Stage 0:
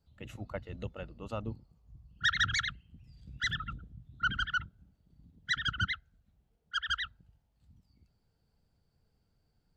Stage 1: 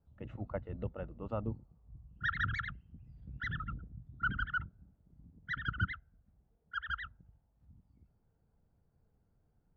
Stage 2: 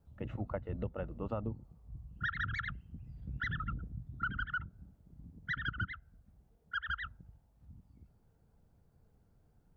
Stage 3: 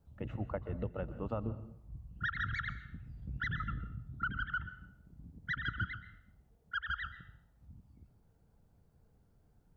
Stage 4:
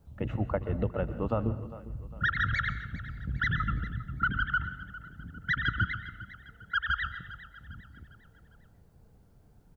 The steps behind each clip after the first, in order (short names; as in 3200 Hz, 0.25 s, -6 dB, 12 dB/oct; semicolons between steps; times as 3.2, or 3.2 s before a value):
LPF 1300 Hz 12 dB/oct; gain +1 dB
compressor 6:1, threshold -39 dBFS, peak gain reduction 12 dB; gain +5.5 dB
plate-style reverb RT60 0.64 s, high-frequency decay 0.95×, pre-delay 0.11 s, DRR 13 dB
feedback echo 0.403 s, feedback 45%, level -16 dB; gain +8 dB